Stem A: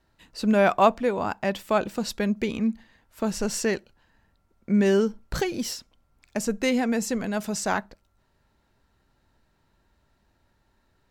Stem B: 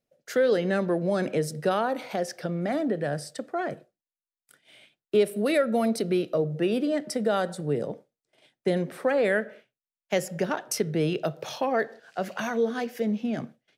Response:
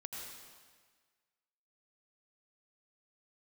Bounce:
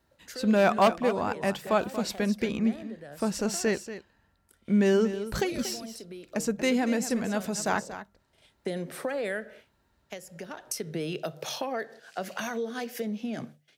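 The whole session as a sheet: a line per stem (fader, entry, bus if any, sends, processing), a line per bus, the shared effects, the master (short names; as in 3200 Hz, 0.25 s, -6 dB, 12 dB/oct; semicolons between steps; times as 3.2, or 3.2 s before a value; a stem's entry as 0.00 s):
-2.0 dB, 0.00 s, no send, echo send -12.5 dB, wavefolder -11 dBFS
0.0 dB, 0.00 s, no send, no echo send, high shelf 3400 Hz +8.5 dB; notches 50/100/150 Hz; compressor 3:1, threshold -31 dBFS, peak gain reduction 11 dB; auto duck -11 dB, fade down 0.35 s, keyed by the first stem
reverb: off
echo: echo 0.234 s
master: HPF 50 Hz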